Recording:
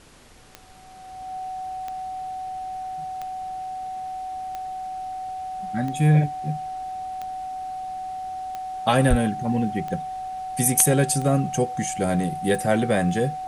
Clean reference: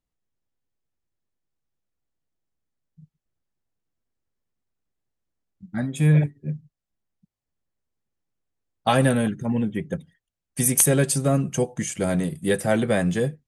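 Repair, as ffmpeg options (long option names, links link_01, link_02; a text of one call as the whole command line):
ffmpeg -i in.wav -filter_complex "[0:a]adeclick=threshold=4,bandreject=frequency=750:width=30,asplit=3[link_01][link_02][link_03];[link_01]afade=type=out:start_time=9.09:duration=0.02[link_04];[link_02]highpass=frequency=140:width=0.5412,highpass=frequency=140:width=1.3066,afade=type=in:start_time=9.09:duration=0.02,afade=type=out:start_time=9.21:duration=0.02[link_05];[link_03]afade=type=in:start_time=9.21:duration=0.02[link_06];[link_04][link_05][link_06]amix=inputs=3:normalize=0,afftdn=noise_reduction=30:noise_floor=-32" out.wav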